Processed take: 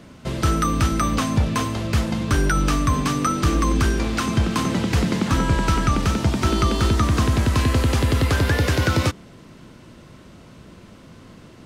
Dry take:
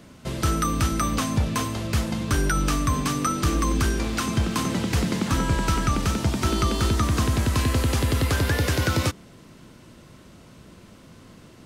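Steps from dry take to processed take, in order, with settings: treble shelf 7.1 kHz -8 dB; trim +3.5 dB

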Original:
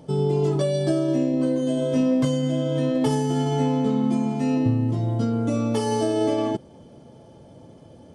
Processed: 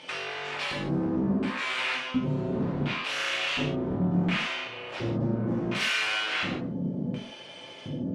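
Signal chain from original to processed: high-pass 49 Hz 12 dB/octave; peaking EQ 3.2 kHz +5.5 dB 2.6 oct; compressor with a negative ratio -26 dBFS, ratio -1; sine folder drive 7 dB, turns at -21 dBFS; LFO band-pass square 0.7 Hz 200–2600 Hz; gated-style reverb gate 200 ms falling, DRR -4.5 dB

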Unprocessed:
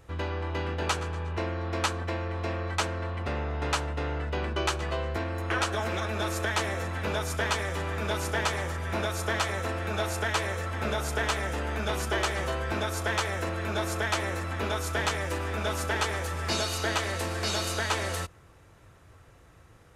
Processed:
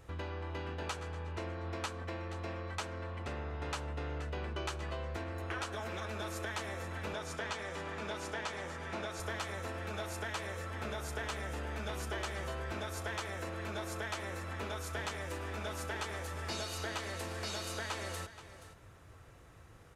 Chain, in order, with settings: 7.13–9.20 s: band-pass 120–8000 Hz; compression 2:1, threshold -41 dBFS, peak gain reduction 10.5 dB; delay 477 ms -14 dB; trim -2 dB

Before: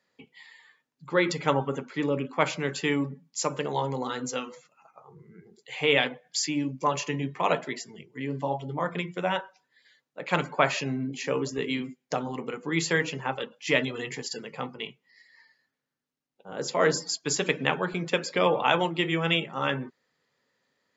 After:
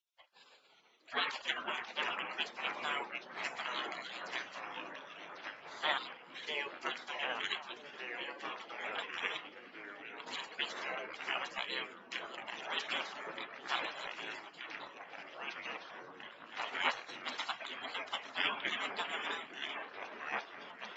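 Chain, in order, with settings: spectral selection erased 13.12–13.35 s, 1.5–5.6 kHz; band-stop 3.6 kHz, Q 5.7; spectral gate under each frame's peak -25 dB weak; three-band isolator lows -19 dB, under 280 Hz, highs -18 dB, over 4.5 kHz; repeats whose band climbs or falls 426 ms, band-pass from 210 Hz, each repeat 0.7 oct, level -4 dB; ever faster or slower copies 289 ms, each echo -3 st, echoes 3, each echo -6 dB; trim +9.5 dB

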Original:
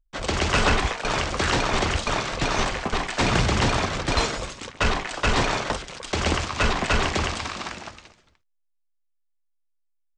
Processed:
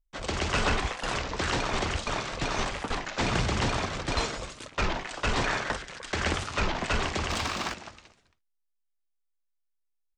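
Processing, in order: 5.44–6.33 s: peaking EQ 1.7 kHz +8 dB 0.58 oct; 7.30–7.74 s: waveshaping leveller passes 2; warped record 33 1/3 rpm, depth 250 cents; trim -6 dB

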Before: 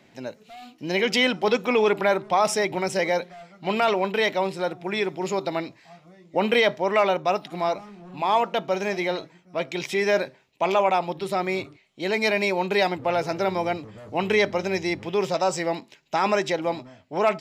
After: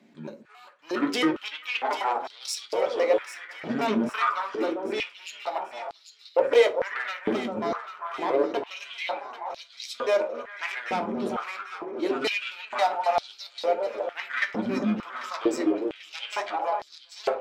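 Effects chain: pitch shift switched off and on -8.5 st, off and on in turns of 136 ms; Chebyshev shaper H 4 -15 dB, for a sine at -9.5 dBFS; echo whose repeats swap between lows and highs 396 ms, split 1.4 kHz, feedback 70%, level -6.5 dB; on a send at -5 dB: reverberation RT60 0.35 s, pre-delay 7 ms; on the sum: step-sequenced high-pass 2.2 Hz 220–4200 Hz; trim -8 dB

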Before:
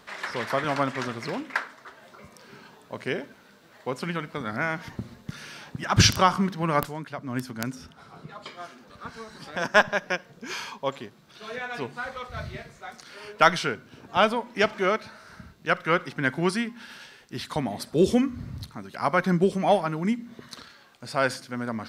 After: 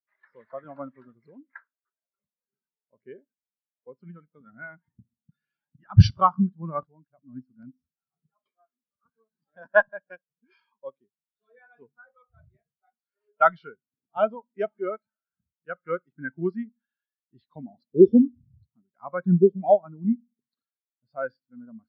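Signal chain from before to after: resonant high shelf 5.9 kHz -7 dB, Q 1.5; spectral contrast expander 2.5:1; trim +1 dB

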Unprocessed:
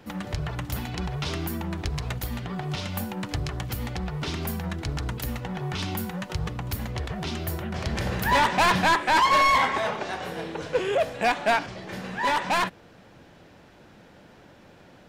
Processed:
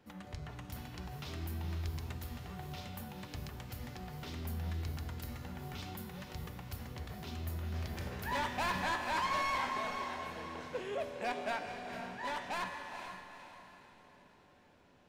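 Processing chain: feedback comb 82 Hz, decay 1.7 s, harmonics odd, mix 80%; echo that smears into a reverb 459 ms, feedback 44%, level -7 dB; trim -2 dB

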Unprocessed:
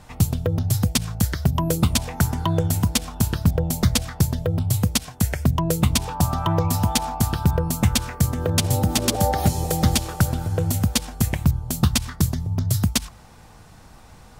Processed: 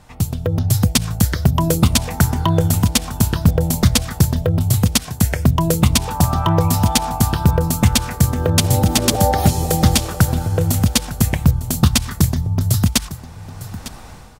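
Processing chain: level rider; delay 903 ms -16 dB; trim -1 dB

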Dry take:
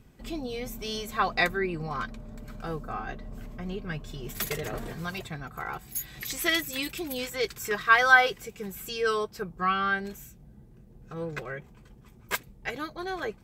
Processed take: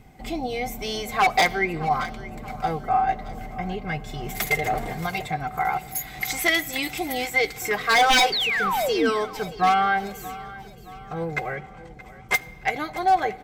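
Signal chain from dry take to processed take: 11.47–12.34 s: low-pass 9.2 kHz 12 dB/octave; in parallel at -2.5 dB: compression, threshold -33 dBFS, peak gain reduction 19 dB; on the sum: small resonant body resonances 760/2100 Hz, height 17 dB, ringing for 45 ms; 8.32–9.10 s: painted sound fall 220–4800 Hz -24 dBFS; wavefolder -12 dBFS; feedback delay 624 ms, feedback 49%, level -17.5 dB; on a send at -17 dB: reverberation RT60 2.0 s, pre-delay 7 ms

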